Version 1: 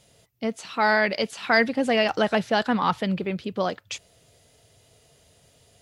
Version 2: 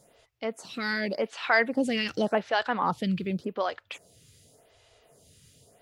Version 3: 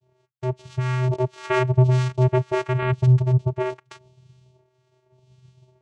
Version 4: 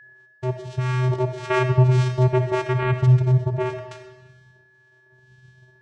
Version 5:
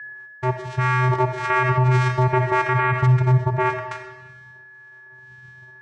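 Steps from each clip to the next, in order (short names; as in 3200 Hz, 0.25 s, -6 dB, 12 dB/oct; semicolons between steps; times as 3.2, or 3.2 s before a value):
in parallel at -1 dB: compressor, threshold -31 dBFS, peak gain reduction 15.5 dB; on the sum: photocell phaser 0.88 Hz; gain -3 dB
expander -54 dBFS; vocoder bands 4, square 127 Hz; gain +8.5 dB
whine 1700 Hz -46 dBFS; digital reverb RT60 1.1 s, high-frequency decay 0.8×, pre-delay 20 ms, DRR 6 dB
band shelf 1400 Hz +11 dB; limiter -11 dBFS, peak gain reduction 9.5 dB; gain +1.5 dB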